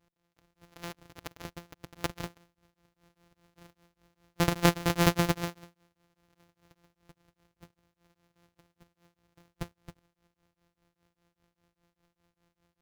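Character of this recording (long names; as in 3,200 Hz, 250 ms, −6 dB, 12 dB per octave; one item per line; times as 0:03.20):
a buzz of ramps at a fixed pitch in blocks of 256 samples
tremolo triangle 5 Hz, depth 100%
aliases and images of a low sample rate 8,600 Hz, jitter 0%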